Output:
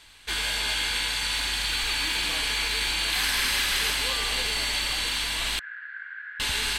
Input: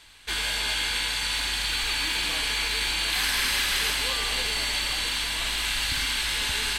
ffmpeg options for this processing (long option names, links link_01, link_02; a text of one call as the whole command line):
ffmpeg -i in.wav -filter_complex "[0:a]asettb=1/sr,asplit=3[link_01][link_02][link_03];[link_01]atrim=end=5.594[link_04];[link_02]atrim=start=5.59:end=6.4,asetpts=PTS-STARTPTS,afade=type=in:duration=0.004:curve=qsin,afade=type=out:start_time=0.806:duration=0.004:curve=qsin,asuperpass=centerf=1600:order=4:qfactor=5.3[link_05];[link_03]atrim=start=6.396[link_06];[link_04][link_05]acrossfade=duration=0.004:curve1=hsin:curve2=qsin[link_07];[link_07][link_06]acrossfade=duration=0.004:curve1=qsin:curve2=hsin" out.wav